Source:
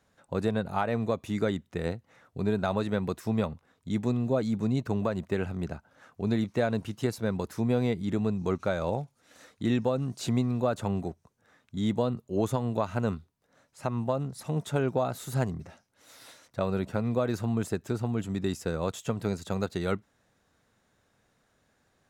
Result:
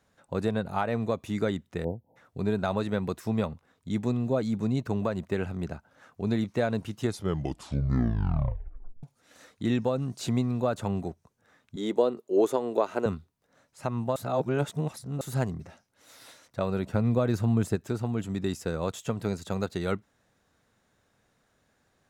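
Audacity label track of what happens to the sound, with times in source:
1.840000	2.160000	spectral selection erased 970–11000 Hz
6.970000	6.970000	tape stop 2.06 s
11.760000	13.060000	resonant high-pass 380 Hz, resonance Q 2.6
14.160000	15.210000	reverse
16.940000	17.760000	bass shelf 210 Hz +7.5 dB

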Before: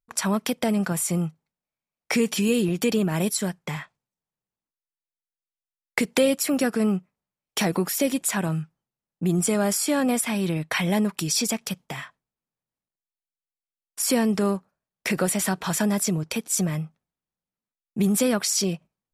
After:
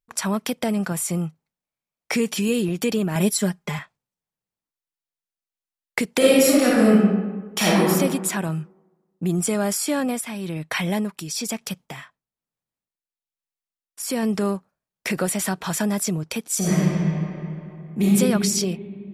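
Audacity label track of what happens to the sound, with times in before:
3.150000	3.790000	comb 4.9 ms, depth 92%
6.170000	7.880000	reverb throw, RT60 1.3 s, DRR -7 dB
9.890000	14.230000	tremolo 1.1 Hz, depth 48%
16.570000	18.040000	reverb throw, RT60 2.9 s, DRR -8 dB

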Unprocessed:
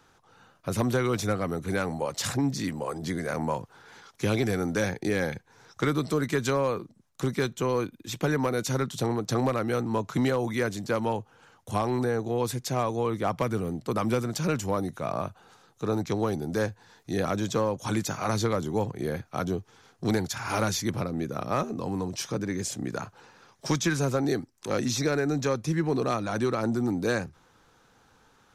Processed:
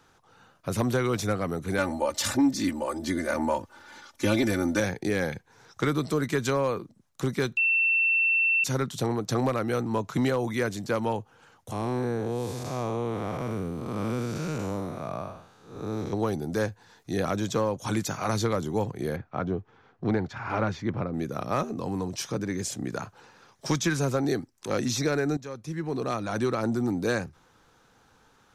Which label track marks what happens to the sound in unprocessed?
1.780000	4.800000	comb 3.4 ms, depth 94%
7.570000	8.640000	bleep 2.69 kHz -20 dBFS
11.720000	16.130000	spectral blur width 243 ms
19.160000	21.140000	low-pass 2.1 kHz
25.370000	26.380000	fade in, from -16 dB

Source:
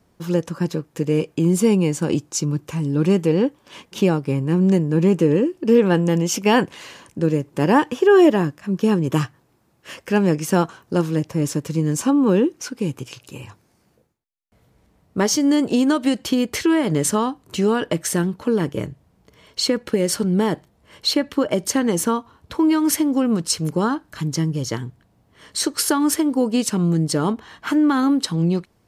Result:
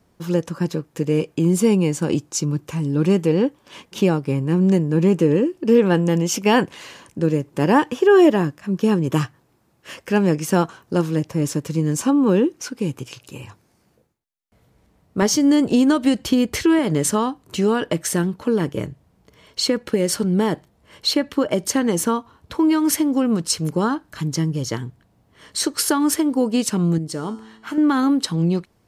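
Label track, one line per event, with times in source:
15.220000	16.790000	bass shelf 130 Hz +10 dB
26.980000	27.780000	feedback comb 110 Hz, decay 1 s

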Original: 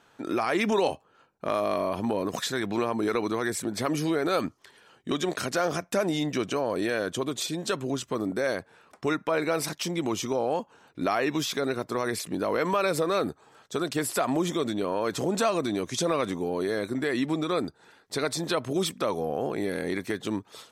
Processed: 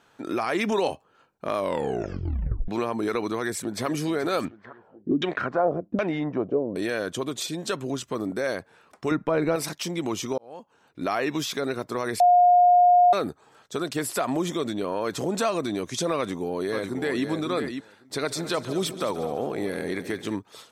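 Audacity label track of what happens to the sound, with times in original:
1.560000	1.560000	tape stop 1.12 s
3.350000	3.860000	echo throw 430 ms, feedback 60%, level -15.5 dB
4.450000	6.760000	LFO low-pass saw down 1.3 Hz 230–3200 Hz
9.110000	9.560000	tilt EQ -3 dB/octave
10.380000	11.150000	fade in
12.200000	13.130000	bleep 713 Hz -13 dBFS
16.170000	17.250000	echo throw 550 ms, feedback 10%, level -6.5 dB
18.140000	20.350000	multi-head delay 71 ms, heads second and third, feedback 41%, level -14.5 dB

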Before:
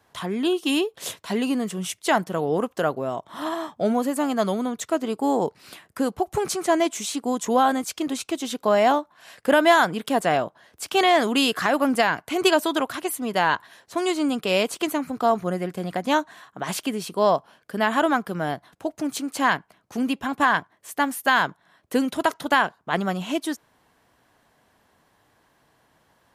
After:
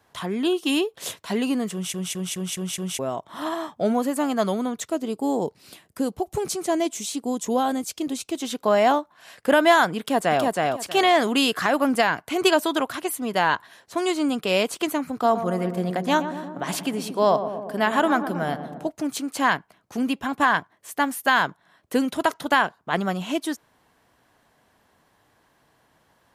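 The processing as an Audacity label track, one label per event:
1.730000	1.730000	stutter in place 0.21 s, 6 plays
4.870000	8.350000	peaking EQ 1.4 kHz -8 dB 1.9 oct
9.990000	10.440000	echo throw 320 ms, feedback 20%, level -2 dB
15.120000	18.890000	filtered feedback delay 117 ms, feedback 77%, low-pass 1.1 kHz, level -9 dB

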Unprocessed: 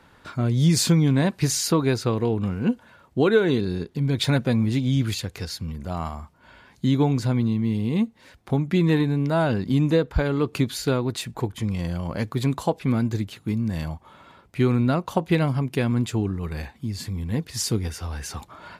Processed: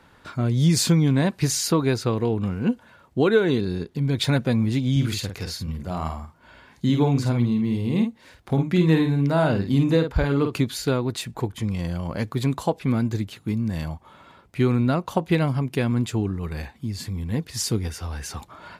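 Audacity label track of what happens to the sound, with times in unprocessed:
4.910000	10.580000	doubling 50 ms -6 dB

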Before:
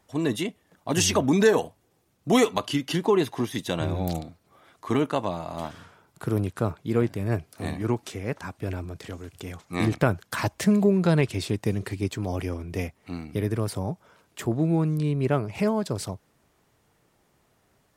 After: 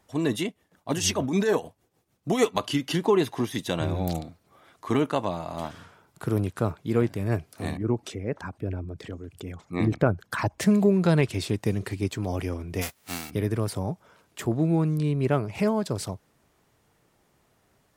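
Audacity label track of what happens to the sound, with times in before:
0.470000	2.550000	tremolo 6.6 Hz, depth 69%
7.770000	10.610000	resonances exaggerated exponent 1.5
12.810000	13.290000	formants flattened exponent 0.3

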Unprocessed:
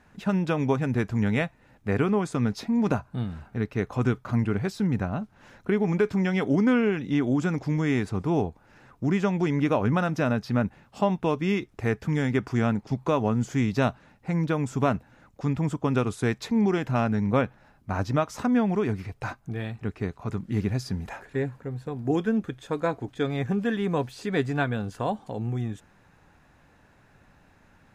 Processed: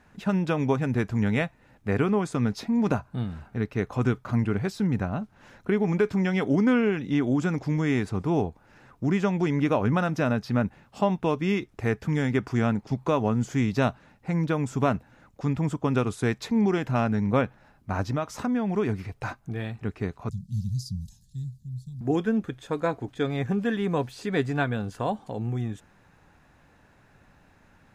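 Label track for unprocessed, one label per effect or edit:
18.010000	18.760000	compression 3:1, threshold -23 dBFS
20.290000	22.010000	inverse Chebyshev band-stop 320–2400 Hz

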